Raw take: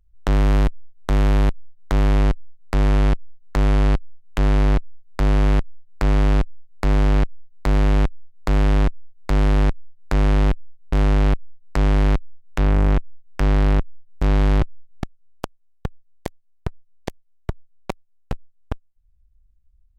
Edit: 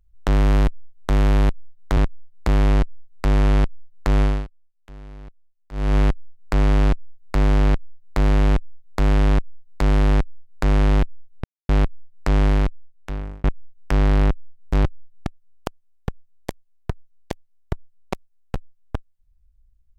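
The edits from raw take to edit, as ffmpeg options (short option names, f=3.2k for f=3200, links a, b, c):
-filter_complex "[0:a]asplit=9[a][b][c][d][e][f][g][h][i];[a]atrim=end=1.972[j];[b]atrim=start=8.798:end=9.312[k];[c]atrim=start=1.968:end=3.96,asetpts=PTS-STARTPTS,afade=t=out:st=1.742:d=0.25:silence=0.0707946[l];[d]atrim=start=3.96:end=5.2,asetpts=PTS-STARTPTS,volume=-23dB[m];[e]atrim=start=5.2:end=10.93,asetpts=PTS-STARTPTS,afade=t=in:d=0.25:silence=0.0707946,afade=t=out:st=5.726:d=0.004:c=hsin[n];[f]atrim=start=10.93:end=11.18,asetpts=PTS-STARTPTS,volume=0[o];[g]atrim=start=11.18:end=12.93,asetpts=PTS-STARTPTS,afade=t=in:d=0.004:c=hsin,afade=t=out:st=0.76:d=0.99[p];[h]atrim=start=12.93:end=14.302,asetpts=PTS-STARTPTS,afade=t=in:d=0.004:c=hsin[q];[i]atrim=start=14.578[r];[j][k]acrossfade=d=0.004:c1=hsin:c2=hsin[s];[l][m][n][o][p][q]concat=n=6:v=0:a=1[t];[s][t]acrossfade=d=0.004:c1=hsin:c2=hsin[u];[u][r]acrossfade=d=0.004:c1=hsin:c2=hsin"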